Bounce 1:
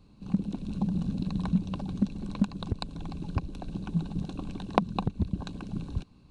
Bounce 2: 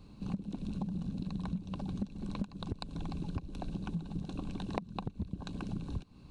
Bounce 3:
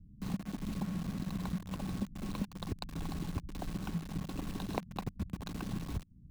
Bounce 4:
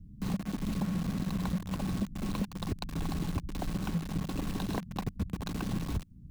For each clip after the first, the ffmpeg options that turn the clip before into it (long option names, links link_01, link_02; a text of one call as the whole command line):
ffmpeg -i in.wav -af "acompressor=threshold=-38dB:ratio=6,volume=3.5dB" out.wav
ffmpeg -i in.wav -filter_complex "[0:a]aeval=exprs='val(0)+0.00112*sin(2*PI*1100*n/s)':channel_layout=same,acrossover=split=240[link_01][link_02];[link_02]acrusher=bits=7:mix=0:aa=0.000001[link_03];[link_01][link_03]amix=inputs=2:normalize=0" out.wav
ffmpeg -i in.wav -af "asoftclip=type=tanh:threshold=-28.5dB,volume=6dB" out.wav